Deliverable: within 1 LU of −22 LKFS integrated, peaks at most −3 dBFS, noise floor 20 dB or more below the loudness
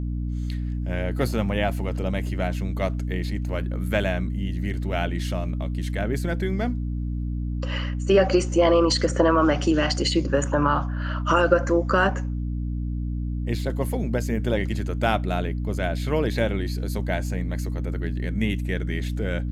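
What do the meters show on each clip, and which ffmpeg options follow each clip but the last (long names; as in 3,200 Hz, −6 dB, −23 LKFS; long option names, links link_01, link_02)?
mains hum 60 Hz; hum harmonics up to 300 Hz; level of the hum −25 dBFS; integrated loudness −25.0 LKFS; sample peak −4.5 dBFS; target loudness −22.0 LKFS
→ -af "bandreject=frequency=60:width_type=h:width=6,bandreject=frequency=120:width_type=h:width=6,bandreject=frequency=180:width_type=h:width=6,bandreject=frequency=240:width_type=h:width=6,bandreject=frequency=300:width_type=h:width=6"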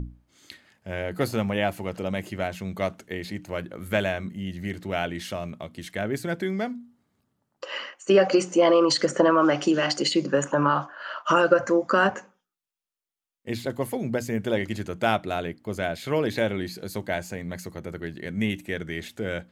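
mains hum none found; integrated loudness −26.0 LKFS; sample peak −4.5 dBFS; target loudness −22.0 LKFS
→ -af "volume=4dB,alimiter=limit=-3dB:level=0:latency=1"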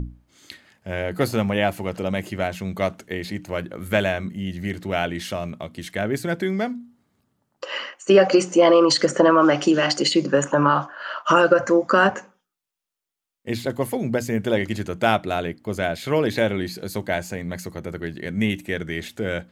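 integrated loudness −22.0 LKFS; sample peak −3.0 dBFS; background noise floor −82 dBFS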